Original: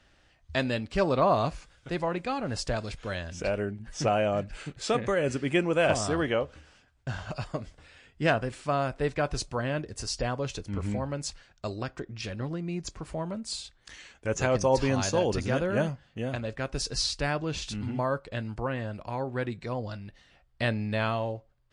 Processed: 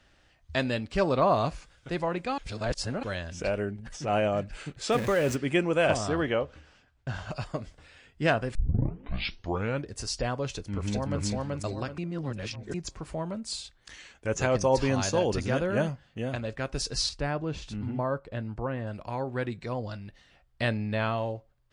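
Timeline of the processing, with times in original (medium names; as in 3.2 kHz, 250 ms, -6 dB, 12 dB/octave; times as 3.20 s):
2.38–3.03 s: reverse
3.76–4.28 s: transient shaper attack -11 dB, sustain +9 dB
4.92–5.36 s: jump at every zero crossing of -33 dBFS
5.97–7.15 s: distance through air 57 m
8.55 s: tape start 1.33 s
10.49–11.24 s: echo throw 380 ms, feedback 35%, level -0.5 dB
11.98–12.74 s: reverse
17.09–18.87 s: treble shelf 2.1 kHz -11 dB
20.77–21.18 s: treble shelf 5.7 kHz -9 dB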